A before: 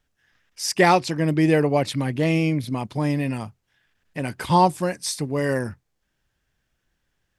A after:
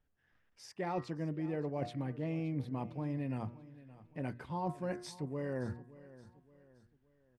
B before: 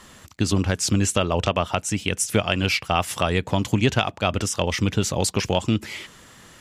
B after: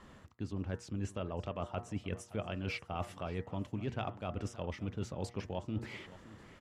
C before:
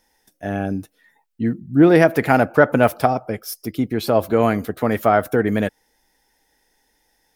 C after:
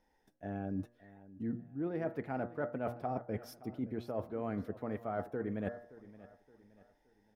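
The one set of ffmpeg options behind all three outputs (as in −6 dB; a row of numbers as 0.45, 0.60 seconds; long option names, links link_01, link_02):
-af "lowpass=frequency=1000:poles=1,bandreject=frequency=119:width_type=h:width=4,bandreject=frequency=238:width_type=h:width=4,bandreject=frequency=357:width_type=h:width=4,bandreject=frequency=476:width_type=h:width=4,bandreject=frequency=595:width_type=h:width=4,bandreject=frequency=714:width_type=h:width=4,bandreject=frequency=833:width_type=h:width=4,bandreject=frequency=952:width_type=h:width=4,bandreject=frequency=1071:width_type=h:width=4,bandreject=frequency=1190:width_type=h:width=4,bandreject=frequency=1309:width_type=h:width=4,bandreject=frequency=1428:width_type=h:width=4,bandreject=frequency=1547:width_type=h:width=4,bandreject=frequency=1666:width_type=h:width=4,bandreject=frequency=1785:width_type=h:width=4,bandreject=frequency=1904:width_type=h:width=4,bandreject=frequency=2023:width_type=h:width=4,areverse,acompressor=threshold=-29dB:ratio=10,areverse,aecho=1:1:571|1142|1713:0.126|0.0504|0.0201,volume=-5dB"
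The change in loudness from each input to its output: −17.0, −17.5, −21.0 LU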